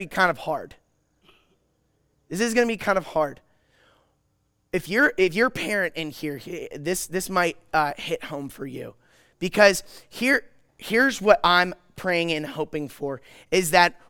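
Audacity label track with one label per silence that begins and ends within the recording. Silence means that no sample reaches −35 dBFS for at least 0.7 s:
0.720000	2.310000	silence
3.330000	4.730000	silence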